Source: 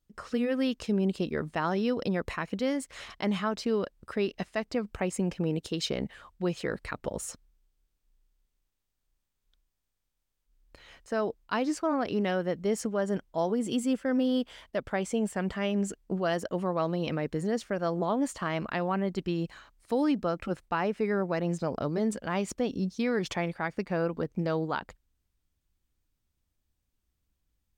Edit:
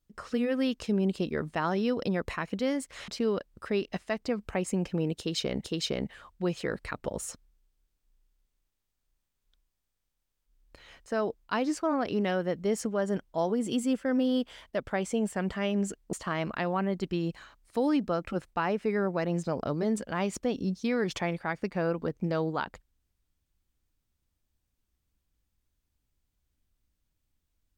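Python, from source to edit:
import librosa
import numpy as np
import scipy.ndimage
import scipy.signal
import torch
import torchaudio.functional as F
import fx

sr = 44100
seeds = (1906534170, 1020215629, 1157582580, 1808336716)

y = fx.edit(x, sr, fx.cut(start_s=3.08, length_s=0.46),
    fx.repeat(start_s=5.64, length_s=0.46, count=2),
    fx.cut(start_s=16.13, length_s=2.15), tone=tone)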